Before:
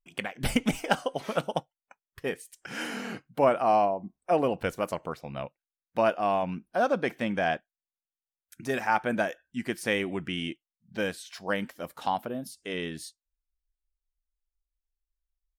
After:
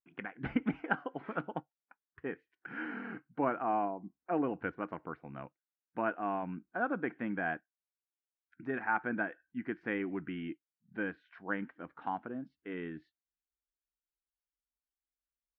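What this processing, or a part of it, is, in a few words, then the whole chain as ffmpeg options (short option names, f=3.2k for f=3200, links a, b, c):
bass cabinet: -af "highpass=74,equalizer=f=100:t=q:w=4:g=-5,equalizer=f=300:t=q:w=4:g=8,equalizer=f=580:t=q:w=4:g=-9,equalizer=f=1.5k:t=q:w=4:g=6,lowpass=f=2.1k:w=0.5412,lowpass=f=2.1k:w=1.3066,volume=-7.5dB"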